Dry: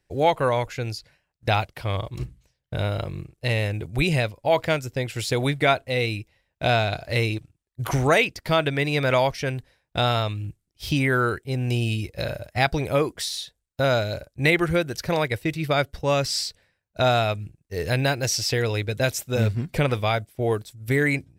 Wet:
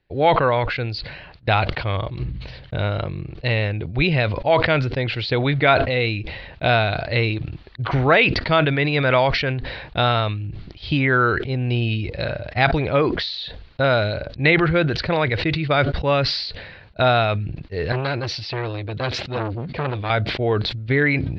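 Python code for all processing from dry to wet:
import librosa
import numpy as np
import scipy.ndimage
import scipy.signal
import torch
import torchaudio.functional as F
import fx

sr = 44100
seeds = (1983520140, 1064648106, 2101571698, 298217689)

y = fx.chain(x, sr, fx.highpass(hz=60.0, slope=12),
    fx.transformer_sat(knee_hz=1200.0), at=(17.92, 20.1))
y = scipy.signal.sosfilt(scipy.signal.cheby1(5, 1.0, 4400.0, 'lowpass', fs=sr, output='sos'), y)
y = fx.dynamic_eq(y, sr, hz=1400.0, q=1.5, threshold_db=-40.0, ratio=4.0, max_db=4)
y = fx.sustainer(y, sr, db_per_s=43.0)
y = y * librosa.db_to_amplitude(2.5)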